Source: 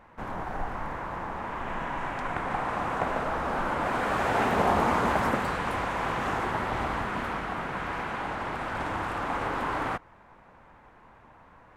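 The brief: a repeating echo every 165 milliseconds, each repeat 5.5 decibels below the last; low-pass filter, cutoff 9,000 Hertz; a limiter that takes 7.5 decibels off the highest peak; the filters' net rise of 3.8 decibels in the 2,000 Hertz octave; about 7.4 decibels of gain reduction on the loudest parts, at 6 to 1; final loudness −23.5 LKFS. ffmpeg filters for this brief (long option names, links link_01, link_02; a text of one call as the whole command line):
ffmpeg -i in.wav -af "lowpass=9000,equalizer=frequency=2000:width_type=o:gain=5,acompressor=threshold=-27dB:ratio=6,alimiter=limit=-24dB:level=0:latency=1,aecho=1:1:165|330|495|660|825|990|1155:0.531|0.281|0.149|0.079|0.0419|0.0222|0.0118,volume=8.5dB" out.wav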